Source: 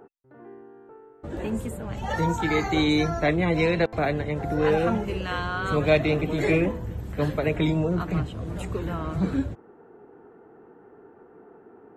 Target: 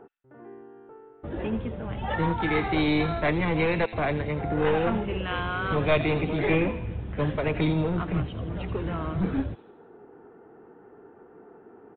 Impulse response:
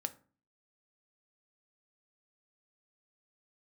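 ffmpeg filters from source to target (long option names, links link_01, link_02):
-filter_complex "[0:a]acrossover=split=2600[link_01][link_02];[link_01]aeval=exprs='clip(val(0),-1,0.0562)':channel_layout=same[link_03];[link_02]aecho=1:1:83|166|249|332|415|498|581:0.501|0.276|0.152|0.0834|0.0459|0.0252|0.0139[link_04];[link_03][link_04]amix=inputs=2:normalize=0,aresample=8000,aresample=44100"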